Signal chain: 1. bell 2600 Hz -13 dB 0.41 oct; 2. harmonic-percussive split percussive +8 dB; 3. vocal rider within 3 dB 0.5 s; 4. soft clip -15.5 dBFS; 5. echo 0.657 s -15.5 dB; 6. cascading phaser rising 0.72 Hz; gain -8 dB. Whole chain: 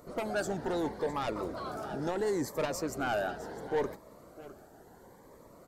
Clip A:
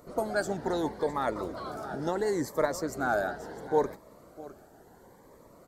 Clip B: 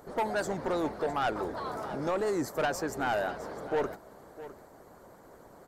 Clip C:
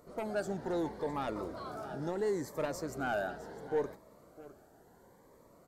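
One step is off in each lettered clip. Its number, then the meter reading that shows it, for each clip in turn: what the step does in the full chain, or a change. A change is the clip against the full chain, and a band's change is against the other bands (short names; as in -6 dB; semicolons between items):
4, distortion -10 dB; 6, 1 kHz band +3.0 dB; 2, 4 kHz band -4.0 dB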